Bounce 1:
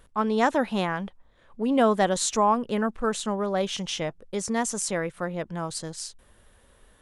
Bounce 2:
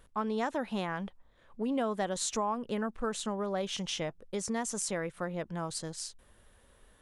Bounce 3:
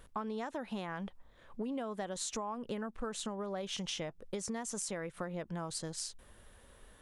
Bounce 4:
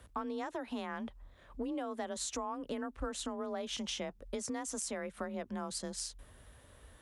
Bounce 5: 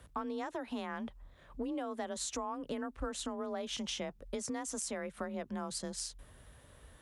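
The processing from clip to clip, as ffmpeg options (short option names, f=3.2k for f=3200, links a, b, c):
-af "acompressor=threshold=-26dB:ratio=3,volume=-4dB"
-af "acompressor=threshold=-39dB:ratio=6,volume=3dB"
-af "afreqshift=32"
-af "equalizer=f=150:t=o:w=0.25:g=6.5"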